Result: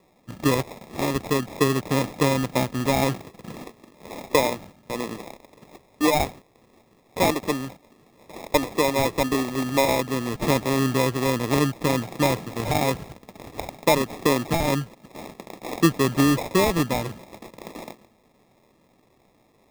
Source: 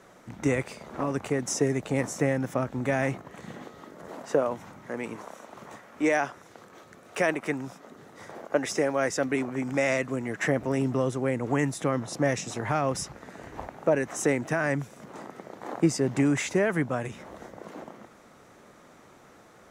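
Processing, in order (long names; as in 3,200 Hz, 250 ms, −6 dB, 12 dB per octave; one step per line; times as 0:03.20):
low-pass filter 2,600 Hz 12 dB per octave
noise gate −43 dBFS, range −11 dB
sample-rate reduction 1,500 Hz, jitter 0%
level +4.5 dB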